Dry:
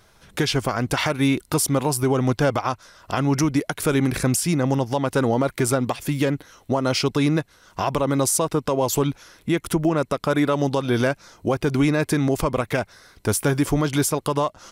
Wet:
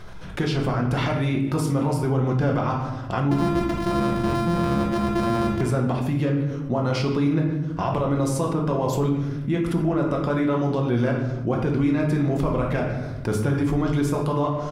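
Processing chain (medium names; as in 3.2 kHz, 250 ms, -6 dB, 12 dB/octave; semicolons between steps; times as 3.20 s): 3.31–5.61 s: sorted samples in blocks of 128 samples; low-pass 1.1 kHz 6 dB/octave; peaking EQ 600 Hz -5 dB 2.9 oct; speakerphone echo 150 ms, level -16 dB; reverberation RT60 0.75 s, pre-delay 6 ms, DRR 0.5 dB; level flattener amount 50%; trim -3.5 dB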